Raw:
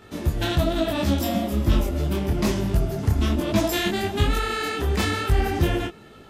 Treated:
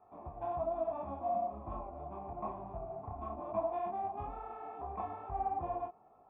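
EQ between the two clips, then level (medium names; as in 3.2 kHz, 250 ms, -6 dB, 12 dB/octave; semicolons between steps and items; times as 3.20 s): cascade formant filter a; low-pass 3.4 kHz; +1.5 dB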